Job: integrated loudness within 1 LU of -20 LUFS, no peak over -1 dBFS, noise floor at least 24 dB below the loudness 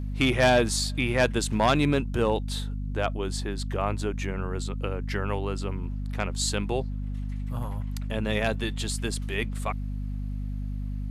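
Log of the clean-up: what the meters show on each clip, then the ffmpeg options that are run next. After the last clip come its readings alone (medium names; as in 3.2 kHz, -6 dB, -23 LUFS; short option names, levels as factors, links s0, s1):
hum 50 Hz; highest harmonic 250 Hz; hum level -29 dBFS; loudness -28.0 LUFS; peak level -12.5 dBFS; loudness target -20.0 LUFS
-> -af "bandreject=f=50:t=h:w=4,bandreject=f=100:t=h:w=4,bandreject=f=150:t=h:w=4,bandreject=f=200:t=h:w=4,bandreject=f=250:t=h:w=4"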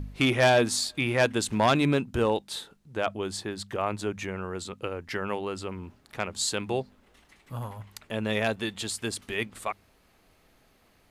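hum not found; loudness -28.5 LUFS; peak level -13.5 dBFS; loudness target -20.0 LUFS
-> -af "volume=2.66"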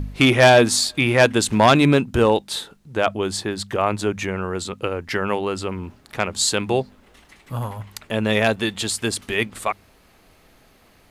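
loudness -20.0 LUFS; peak level -5.0 dBFS; noise floor -55 dBFS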